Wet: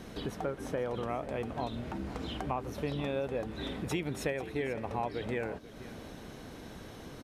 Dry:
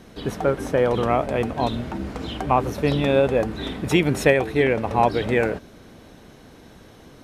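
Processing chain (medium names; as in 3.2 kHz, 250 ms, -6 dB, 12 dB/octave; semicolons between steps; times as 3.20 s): compression 2.5:1, threshold -39 dBFS, peak gain reduction 18.5 dB; delay 489 ms -16.5 dB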